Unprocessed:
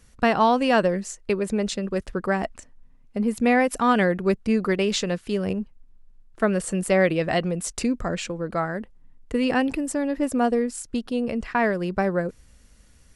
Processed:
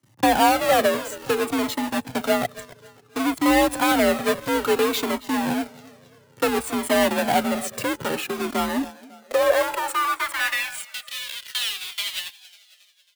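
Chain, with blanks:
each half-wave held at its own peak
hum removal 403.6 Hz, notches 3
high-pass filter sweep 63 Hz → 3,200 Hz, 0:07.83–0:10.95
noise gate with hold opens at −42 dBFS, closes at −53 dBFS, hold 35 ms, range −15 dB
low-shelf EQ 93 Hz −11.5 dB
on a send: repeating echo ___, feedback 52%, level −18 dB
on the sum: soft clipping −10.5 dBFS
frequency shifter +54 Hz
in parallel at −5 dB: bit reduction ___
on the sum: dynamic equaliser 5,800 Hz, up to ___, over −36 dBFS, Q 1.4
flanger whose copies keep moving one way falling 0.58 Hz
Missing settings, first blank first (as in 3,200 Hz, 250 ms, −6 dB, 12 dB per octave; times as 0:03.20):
273 ms, 5 bits, −6 dB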